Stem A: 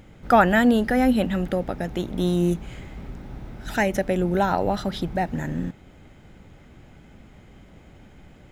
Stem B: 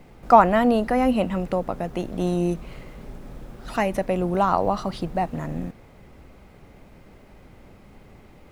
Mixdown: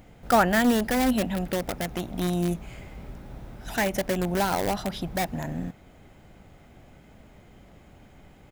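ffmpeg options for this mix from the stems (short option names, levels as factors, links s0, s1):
-filter_complex "[0:a]volume=0.631[s0];[1:a]equalizer=f=690:t=o:w=0.5:g=8,acrossover=split=370|3300[s1][s2][s3];[s1]acompressor=threshold=0.00178:ratio=4[s4];[s2]acompressor=threshold=0.1:ratio=4[s5];[s3]acompressor=threshold=0.00398:ratio=4[s6];[s4][s5][s6]amix=inputs=3:normalize=0,aeval=exprs='(mod(10*val(0)+1,2)-1)/10':c=same,adelay=0.7,volume=0.355[s7];[s0][s7]amix=inputs=2:normalize=0,highshelf=f=9300:g=6.5"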